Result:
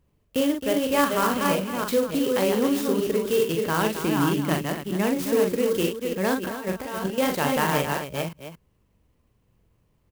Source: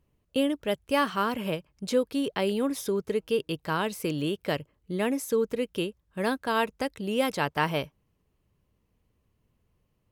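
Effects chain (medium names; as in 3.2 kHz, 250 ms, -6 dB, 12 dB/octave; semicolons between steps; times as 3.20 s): chunks repeated in reverse 307 ms, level -4 dB; 4.04–5.04 s: graphic EQ 250/500/1000/8000 Hz +6/-7/+4/-9 dB; in parallel at 0 dB: peak limiter -18.5 dBFS, peak gain reduction 8 dB; 6.45–7.18 s: on the sum: compressor with a negative ratio -27 dBFS, ratio -0.5; on a send: multi-tap echo 42/266 ms -4.5/-9.5 dB; on the sum: sampling jitter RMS 0.04 ms; trim -3 dB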